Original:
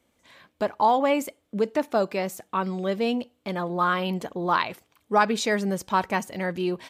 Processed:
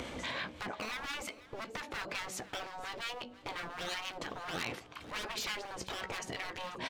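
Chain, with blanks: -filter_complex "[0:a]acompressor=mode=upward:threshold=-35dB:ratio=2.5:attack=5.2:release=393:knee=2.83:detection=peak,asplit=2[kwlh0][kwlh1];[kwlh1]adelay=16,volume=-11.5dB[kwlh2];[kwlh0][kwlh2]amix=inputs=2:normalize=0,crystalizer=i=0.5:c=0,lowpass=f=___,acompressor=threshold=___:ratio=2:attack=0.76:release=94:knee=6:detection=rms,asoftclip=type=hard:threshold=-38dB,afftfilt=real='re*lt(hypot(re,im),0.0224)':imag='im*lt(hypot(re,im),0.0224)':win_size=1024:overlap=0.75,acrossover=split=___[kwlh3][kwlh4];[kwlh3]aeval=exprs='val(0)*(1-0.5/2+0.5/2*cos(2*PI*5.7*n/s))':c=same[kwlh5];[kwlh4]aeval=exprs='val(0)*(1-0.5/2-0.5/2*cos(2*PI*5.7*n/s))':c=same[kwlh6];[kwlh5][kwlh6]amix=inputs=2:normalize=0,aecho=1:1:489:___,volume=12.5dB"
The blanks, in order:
4.3k, -42dB, 1000, 0.119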